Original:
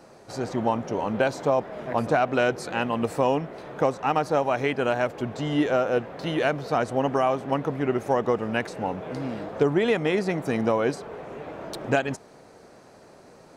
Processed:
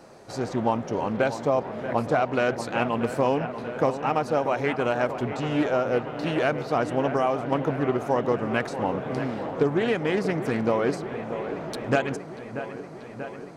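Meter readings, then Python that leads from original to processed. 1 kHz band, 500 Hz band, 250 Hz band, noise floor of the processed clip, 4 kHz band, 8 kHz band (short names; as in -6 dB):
-0.5 dB, 0.0 dB, +0.5 dB, -40 dBFS, -1.5 dB, n/a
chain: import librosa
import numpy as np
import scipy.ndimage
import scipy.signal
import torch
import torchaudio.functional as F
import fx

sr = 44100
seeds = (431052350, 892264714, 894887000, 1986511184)

p1 = fx.rider(x, sr, range_db=3, speed_s=0.5)
p2 = x + (p1 * 10.0 ** (2.5 / 20.0))
p3 = fx.echo_wet_lowpass(p2, sr, ms=636, feedback_pct=74, hz=2600.0, wet_db=-11)
p4 = fx.doppler_dist(p3, sr, depth_ms=0.21)
y = p4 * 10.0 ** (-8.0 / 20.0)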